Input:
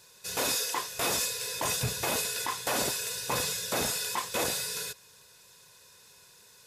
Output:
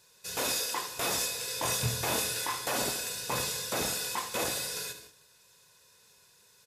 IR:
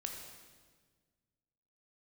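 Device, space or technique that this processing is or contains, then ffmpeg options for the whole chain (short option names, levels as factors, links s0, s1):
keyed gated reverb: -filter_complex "[0:a]asettb=1/sr,asplit=3[s0][s1][s2];[s0]atrim=end=1.454[s3];[s1]atrim=start=1.45:end=2.69,asetpts=PTS-STARTPTS,afade=t=in:d=0.004:c=qsin,afade=t=out:st=1.236:d=0.004:c=qsin,asplit=2[s4][s5];[s5]adelay=25,volume=0.631[s6];[s4][s6]amix=inputs=2:normalize=0,atrim=end_sample=54684[s7];[s2]atrim=start=2.686[s8];[s3][s7]acrossfade=d=0.004:c1=hsin:c2=qsin[s9];[s9][s8]acrossfade=d=0.004:c1=qsin:c2=hsin,aecho=1:1:75:0.266,asplit=3[s10][s11][s12];[1:a]atrim=start_sample=2205[s13];[s11][s13]afir=irnorm=-1:irlink=0[s14];[s12]apad=whole_len=297234[s15];[s14][s15]sidechaingate=range=0.0224:threshold=0.00224:ratio=16:detection=peak,volume=0.794[s16];[s10][s16]amix=inputs=2:normalize=0,volume=0.501"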